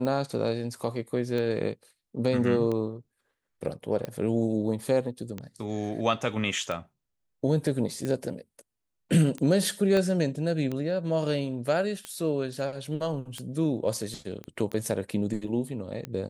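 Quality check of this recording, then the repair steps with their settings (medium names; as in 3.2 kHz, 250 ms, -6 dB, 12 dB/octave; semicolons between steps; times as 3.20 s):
tick 45 rpm -20 dBFS
9.97 s: pop -15 dBFS
14.44 s: pop -25 dBFS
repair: de-click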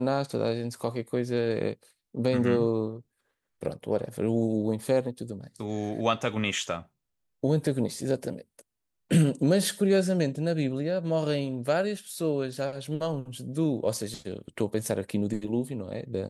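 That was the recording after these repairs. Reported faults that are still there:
9.97 s: pop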